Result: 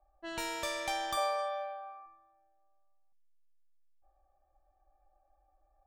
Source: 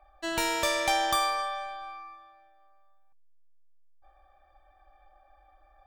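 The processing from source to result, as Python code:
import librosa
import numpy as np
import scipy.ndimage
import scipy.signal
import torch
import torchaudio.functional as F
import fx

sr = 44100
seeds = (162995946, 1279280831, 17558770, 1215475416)

y = fx.env_lowpass(x, sr, base_hz=720.0, full_db=-25.5)
y = fx.highpass_res(y, sr, hz=560.0, q=4.9, at=(1.17, 2.06))
y = y * 10.0 ** (-9.0 / 20.0)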